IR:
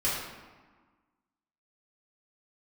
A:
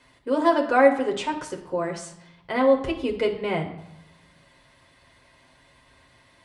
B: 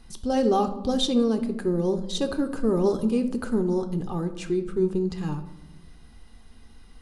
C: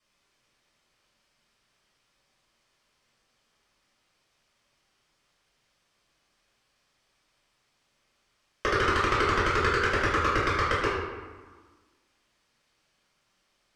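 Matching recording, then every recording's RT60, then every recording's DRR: C; 0.80 s, 1.1 s, 1.4 s; 0.5 dB, 8.0 dB, -8.5 dB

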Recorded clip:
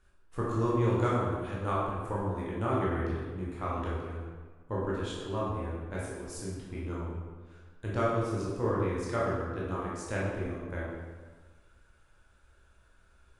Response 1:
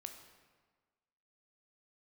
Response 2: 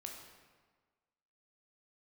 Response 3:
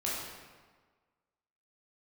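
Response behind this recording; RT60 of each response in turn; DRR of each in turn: 3; 1.5 s, 1.5 s, 1.5 s; 5.0 dB, 1.0 dB, -6.5 dB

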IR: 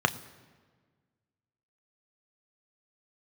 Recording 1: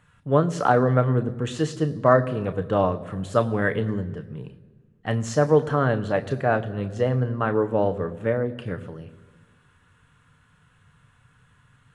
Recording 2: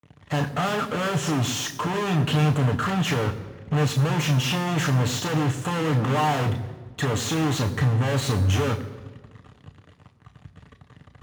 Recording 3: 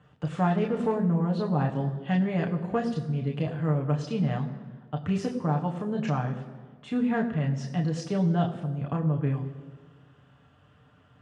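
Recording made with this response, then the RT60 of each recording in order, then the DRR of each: 1; 1.5 s, 1.5 s, 1.5 s; 8.5 dB, 4.5 dB, 0.5 dB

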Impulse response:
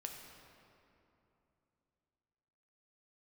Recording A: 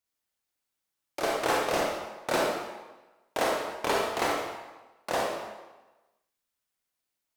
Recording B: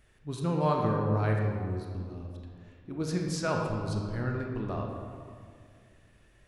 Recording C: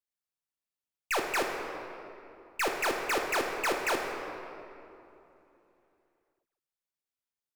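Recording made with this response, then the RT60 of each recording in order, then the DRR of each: C; 1.2 s, 2.2 s, 3.0 s; -2.5 dB, 0.0 dB, 1.5 dB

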